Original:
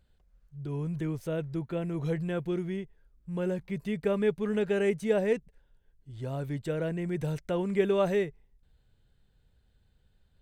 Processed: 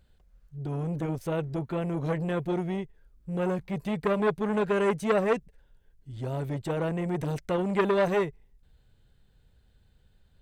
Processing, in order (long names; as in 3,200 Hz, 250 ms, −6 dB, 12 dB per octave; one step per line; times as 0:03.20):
saturating transformer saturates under 1,100 Hz
level +4.5 dB